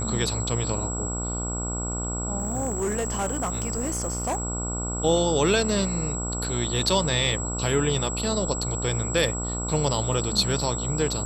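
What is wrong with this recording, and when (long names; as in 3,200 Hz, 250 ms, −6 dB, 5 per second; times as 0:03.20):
mains buzz 60 Hz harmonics 24 −31 dBFS
whistle 7,700 Hz −31 dBFS
0:02.38–0:04.43: clipping −22.5 dBFS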